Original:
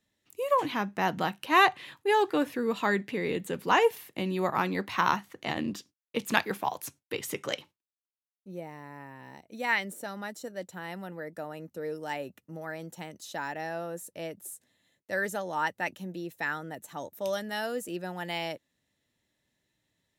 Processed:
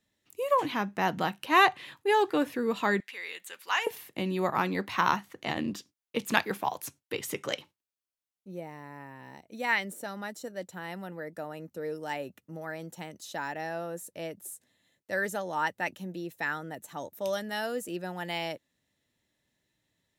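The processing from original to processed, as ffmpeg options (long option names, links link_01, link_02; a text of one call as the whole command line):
ffmpeg -i in.wav -filter_complex "[0:a]asettb=1/sr,asplit=3[link_01][link_02][link_03];[link_01]atrim=end=3.004[link_04];[link_02]atrim=start=3:end=3.87,asetpts=PTS-STARTPTS,afade=type=in:duration=0.004:curve=qsin,afade=type=out:start_time=0.866:duration=0.004:curve=qsin,highpass=1400[link_05];[link_03]atrim=start=3.866[link_06];[link_04][link_05]acrossfade=duration=0.004:curve1=hsin:curve2=qsin[link_07];[link_07][link_06]acrossfade=duration=0.004:curve1=qsin:curve2=hsin" out.wav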